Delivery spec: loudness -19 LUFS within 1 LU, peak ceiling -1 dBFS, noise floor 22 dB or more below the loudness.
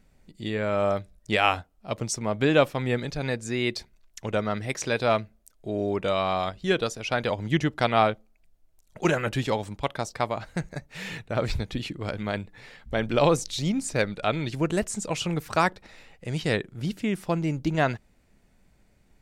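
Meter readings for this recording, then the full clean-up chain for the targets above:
loudness -27.0 LUFS; peak level -6.5 dBFS; loudness target -19.0 LUFS
-> trim +8 dB; peak limiter -1 dBFS

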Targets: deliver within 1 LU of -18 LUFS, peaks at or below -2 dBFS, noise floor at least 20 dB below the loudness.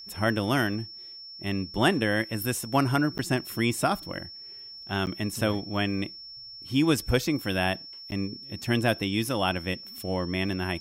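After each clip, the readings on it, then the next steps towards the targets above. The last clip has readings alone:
dropouts 3; longest dropout 9.2 ms; steady tone 5.4 kHz; tone level -41 dBFS; loudness -28.0 LUFS; peak level -7.5 dBFS; loudness target -18.0 LUFS
-> interpolate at 3.18/5.06/8.11 s, 9.2 ms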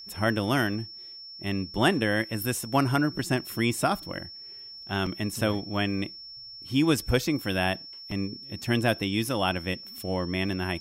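dropouts 0; steady tone 5.4 kHz; tone level -41 dBFS
-> band-stop 5.4 kHz, Q 30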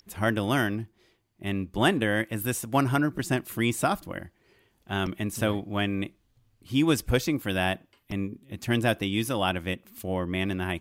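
steady tone not found; loudness -28.0 LUFS; peak level -8.0 dBFS; loudness target -18.0 LUFS
-> trim +10 dB; peak limiter -2 dBFS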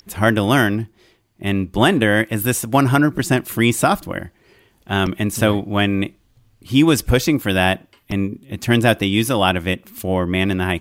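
loudness -18.5 LUFS; peak level -2.0 dBFS; noise floor -59 dBFS

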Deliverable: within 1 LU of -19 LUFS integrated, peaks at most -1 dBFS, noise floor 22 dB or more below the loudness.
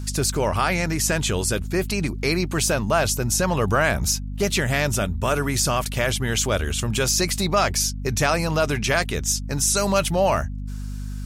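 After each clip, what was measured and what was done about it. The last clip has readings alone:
tick rate 18 per s; hum 50 Hz; highest harmonic 250 Hz; hum level -28 dBFS; loudness -22.0 LUFS; peak level -7.0 dBFS; loudness target -19.0 LUFS
-> de-click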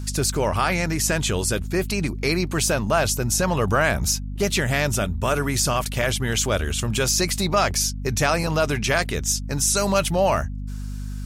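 tick rate 0.18 per s; hum 50 Hz; highest harmonic 250 Hz; hum level -28 dBFS
-> hum notches 50/100/150/200/250 Hz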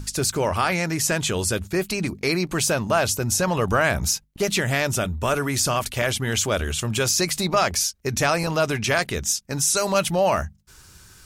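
hum not found; loudness -22.5 LUFS; peak level -7.0 dBFS; loudness target -19.0 LUFS
-> trim +3.5 dB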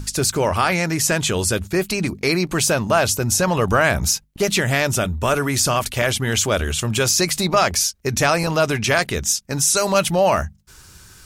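loudness -19.0 LUFS; peak level -3.5 dBFS; noise floor -47 dBFS

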